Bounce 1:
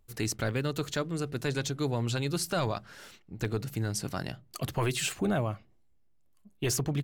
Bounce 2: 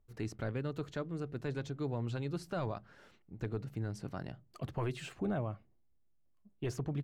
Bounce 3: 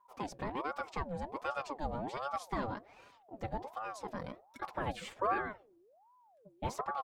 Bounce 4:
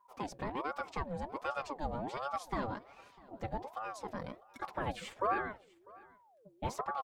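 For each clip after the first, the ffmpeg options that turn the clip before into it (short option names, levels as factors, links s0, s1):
-af "lowpass=f=1200:p=1,volume=0.501"
-af "aecho=1:1:4.8:0.85,aeval=exprs='val(0)*sin(2*PI*670*n/s+670*0.5/1.3*sin(2*PI*1.3*n/s))':c=same,volume=1.12"
-af "aecho=1:1:649:0.0668"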